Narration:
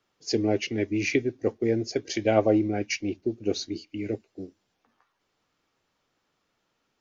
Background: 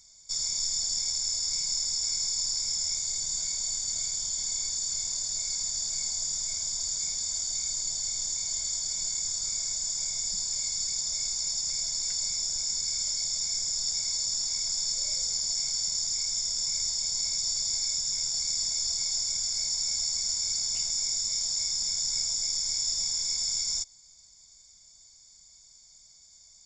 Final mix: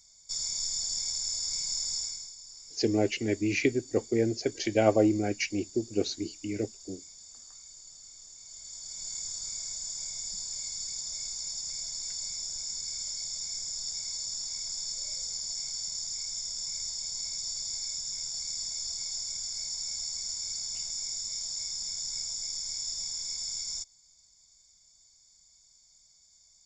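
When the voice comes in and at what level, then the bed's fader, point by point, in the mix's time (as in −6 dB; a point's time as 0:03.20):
2.50 s, −1.5 dB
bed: 0:01.99 −3 dB
0:02.37 −18.5 dB
0:08.35 −18.5 dB
0:09.15 −6 dB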